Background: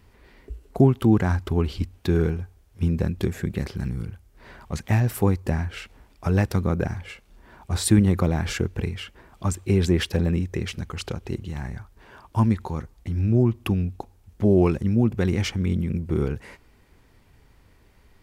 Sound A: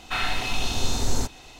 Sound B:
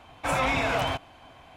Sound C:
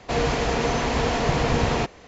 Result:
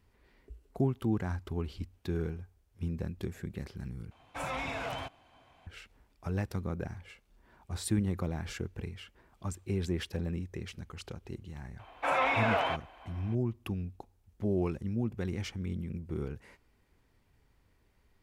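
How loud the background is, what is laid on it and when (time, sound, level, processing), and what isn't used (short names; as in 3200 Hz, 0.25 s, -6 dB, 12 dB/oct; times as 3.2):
background -12.5 dB
4.11 replace with B -11 dB
11.79 add B -1.5 dB + three-band isolator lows -20 dB, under 320 Hz, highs -14 dB, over 3200 Hz
not used: A, C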